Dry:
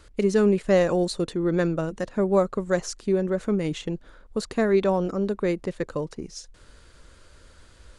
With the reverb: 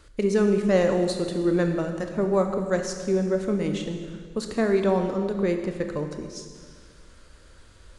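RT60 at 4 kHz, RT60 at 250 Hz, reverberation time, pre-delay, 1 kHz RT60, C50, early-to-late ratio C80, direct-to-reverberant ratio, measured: 1.7 s, 2.1 s, 1.8 s, 19 ms, 1.7 s, 6.5 dB, 7.5 dB, 5.0 dB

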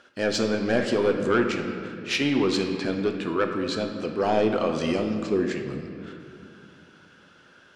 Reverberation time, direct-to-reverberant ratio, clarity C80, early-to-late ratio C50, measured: 2.5 s, 3.5 dB, 7.0 dB, 6.0 dB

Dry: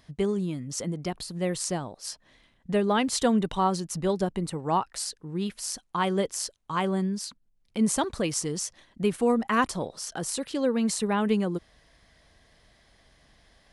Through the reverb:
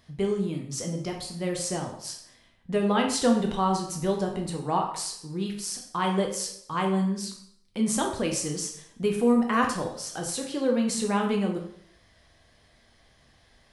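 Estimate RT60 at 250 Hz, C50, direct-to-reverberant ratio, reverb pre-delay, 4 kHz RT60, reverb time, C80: 0.75 s, 6.0 dB, 1.5 dB, 7 ms, 0.60 s, 0.65 s, 10.0 dB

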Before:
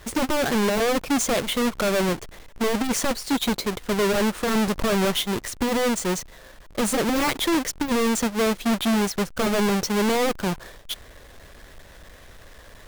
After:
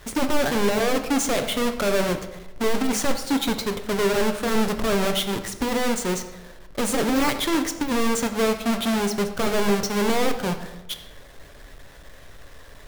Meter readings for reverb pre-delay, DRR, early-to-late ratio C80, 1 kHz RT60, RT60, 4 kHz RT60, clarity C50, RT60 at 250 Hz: 7 ms, 6.5 dB, 11.5 dB, 0.85 s, 0.95 s, 0.60 s, 9.5 dB, 1.0 s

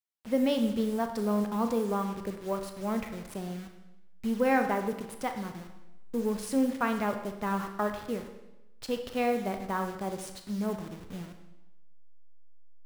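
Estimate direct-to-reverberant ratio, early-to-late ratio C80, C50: 6.0 dB, 10.0 dB, 8.0 dB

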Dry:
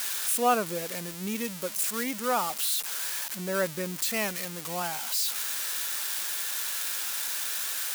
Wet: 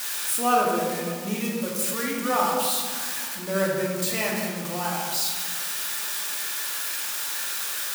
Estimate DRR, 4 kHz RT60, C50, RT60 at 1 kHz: -4.0 dB, 0.85 s, 1.0 dB, 1.7 s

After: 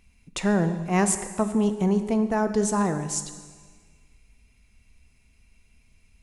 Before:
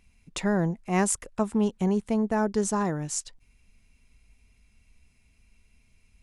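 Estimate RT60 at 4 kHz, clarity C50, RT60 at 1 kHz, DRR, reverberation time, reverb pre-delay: 1.5 s, 10.5 dB, 1.6 s, 9.0 dB, 1.6 s, 6 ms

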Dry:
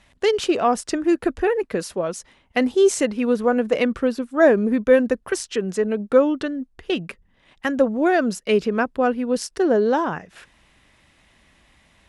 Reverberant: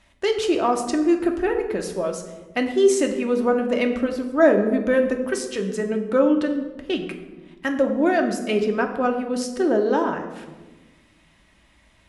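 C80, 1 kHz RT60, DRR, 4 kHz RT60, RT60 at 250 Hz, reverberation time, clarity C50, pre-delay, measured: 10.5 dB, 1.1 s, 3.0 dB, 0.70 s, 1.9 s, 1.2 s, 8.5 dB, 3 ms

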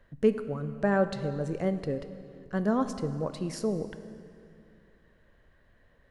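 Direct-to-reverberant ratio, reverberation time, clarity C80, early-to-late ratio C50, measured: 10.0 dB, 2.4 s, 12.0 dB, 11.0 dB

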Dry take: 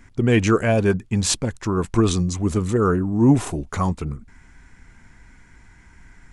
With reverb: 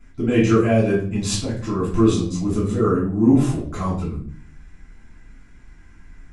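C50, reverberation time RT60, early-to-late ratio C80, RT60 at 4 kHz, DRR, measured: 5.5 dB, 0.55 s, 9.0 dB, 0.40 s, -8.0 dB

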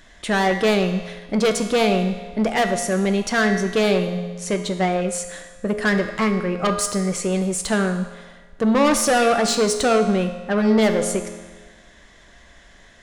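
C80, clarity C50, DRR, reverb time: 9.5 dB, 7.5 dB, 5.5 dB, 1.4 s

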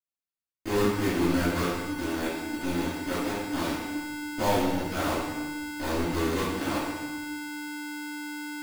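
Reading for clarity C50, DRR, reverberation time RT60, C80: -1.0 dB, -16.0 dB, 1.1 s, 2.0 dB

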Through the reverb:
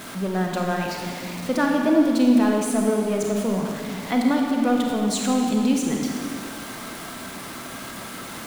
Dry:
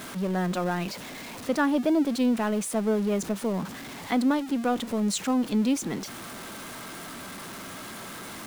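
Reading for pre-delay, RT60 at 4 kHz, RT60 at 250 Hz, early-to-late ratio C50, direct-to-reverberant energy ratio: 29 ms, 1.9 s, 2.4 s, 1.5 dB, 0.5 dB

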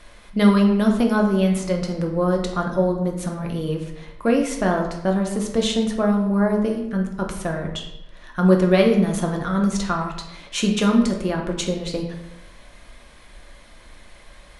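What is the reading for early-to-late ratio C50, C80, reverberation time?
6.0 dB, 8.5 dB, 0.85 s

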